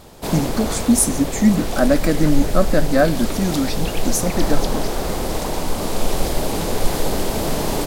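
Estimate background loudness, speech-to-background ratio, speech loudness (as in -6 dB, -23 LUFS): -24.5 LUFS, 5.0 dB, -19.5 LUFS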